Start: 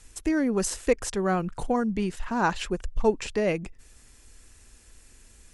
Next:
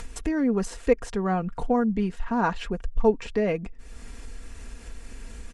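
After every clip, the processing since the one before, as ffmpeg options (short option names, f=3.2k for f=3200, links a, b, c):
-af "lowpass=f=1.9k:p=1,acompressor=mode=upward:threshold=-27dB:ratio=2.5,aecho=1:1:4.3:0.46"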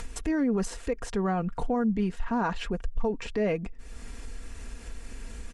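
-af "alimiter=limit=-19.5dB:level=0:latency=1:release=34"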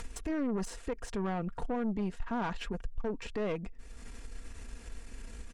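-af "aeval=exprs='(tanh(17.8*val(0)+0.5)-tanh(0.5))/17.8':c=same,volume=-3dB"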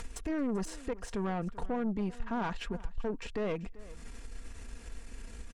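-af "aecho=1:1:388:0.106"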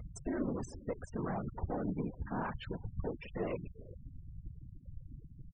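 -filter_complex "[0:a]afftfilt=real='hypot(re,im)*cos(2*PI*random(0))':imag='hypot(re,im)*sin(2*PI*random(1))':win_size=512:overlap=0.75,asplit=2[a][b];[b]adelay=340,highpass=300,lowpass=3.4k,asoftclip=type=hard:threshold=-36dB,volume=-26dB[c];[a][c]amix=inputs=2:normalize=0,afftfilt=real='re*gte(hypot(re,im),0.00562)':imag='im*gte(hypot(re,im),0.00562)':win_size=1024:overlap=0.75,volume=2.5dB"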